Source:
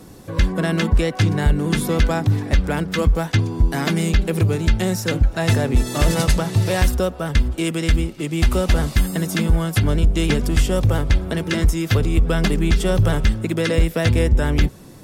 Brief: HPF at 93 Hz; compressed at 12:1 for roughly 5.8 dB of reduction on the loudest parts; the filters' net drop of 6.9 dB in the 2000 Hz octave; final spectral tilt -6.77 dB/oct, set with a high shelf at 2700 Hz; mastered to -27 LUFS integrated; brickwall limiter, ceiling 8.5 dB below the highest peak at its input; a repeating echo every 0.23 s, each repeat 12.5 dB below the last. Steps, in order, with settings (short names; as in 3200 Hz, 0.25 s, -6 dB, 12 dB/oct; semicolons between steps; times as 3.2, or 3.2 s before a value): HPF 93 Hz; bell 2000 Hz -7 dB; high shelf 2700 Hz -4.5 dB; compressor 12:1, threshold -20 dBFS; limiter -19 dBFS; feedback echo 0.23 s, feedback 24%, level -12.5 dB; gain +1 dB